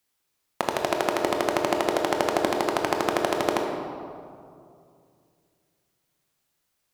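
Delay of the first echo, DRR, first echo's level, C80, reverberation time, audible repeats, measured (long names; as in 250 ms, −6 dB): no echo audible, 2.0 dB, no echo audible, 4.5 dB, 2.4 s, no echo audible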